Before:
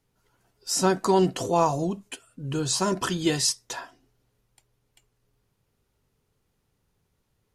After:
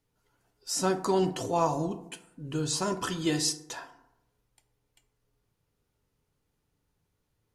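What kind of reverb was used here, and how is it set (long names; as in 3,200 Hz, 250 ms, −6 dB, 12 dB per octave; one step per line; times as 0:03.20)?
feedback delay network reverb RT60 0.82 s, low-frequency decay 1×, high-frequency decay 0.45×, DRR 8.5 dB
level −5 dB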